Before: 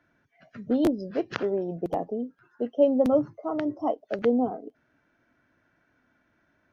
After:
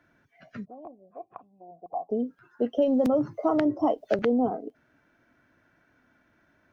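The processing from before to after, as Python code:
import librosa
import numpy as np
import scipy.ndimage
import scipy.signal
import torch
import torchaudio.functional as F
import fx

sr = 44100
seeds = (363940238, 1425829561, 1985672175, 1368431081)

p1 = fx.spec_box(x, sr, start_s=1.41, length_s=0.2, low_hz=310.0, high_hz=2500.0, gain_db=-27)
p2 = fx.over_compress(p1, sr, threshold_db=-25.0, ratio=-0.5)
p3 = p1 + F.gain(torch.from_numpy(p2), -1.5).numpy()
p4 = fx.formant_cascade(p3, sr, vowel='a', at=(0.64, 2.09), fade=0.02)
p5 = fx.band_squash(p4, sr, depth_pct=100, at=(2.73, 4.19))
y = F.gain(torch.from_numpy(p5), -3.5).numpy()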